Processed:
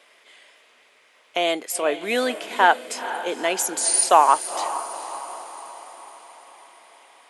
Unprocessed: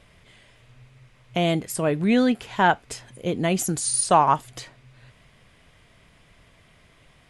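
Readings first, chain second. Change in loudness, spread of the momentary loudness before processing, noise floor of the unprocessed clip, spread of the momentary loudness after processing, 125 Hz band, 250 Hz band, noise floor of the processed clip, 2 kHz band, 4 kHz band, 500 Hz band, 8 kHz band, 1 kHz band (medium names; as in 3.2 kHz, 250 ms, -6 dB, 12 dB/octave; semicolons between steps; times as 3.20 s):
+1.0 dB, 13 LU, -57 dBFS, 20 LU, under -20 dB, -9.5 dB, -57 dBFS, +4.0 dB, +4.5 dB, +1.5 dB, +4.5 dB, +3.5 dB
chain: Bessel high-pass 510 Hz, order 6; echo that smears into a reverb 469 ms, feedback 54%, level -12 dB; trim +4 dB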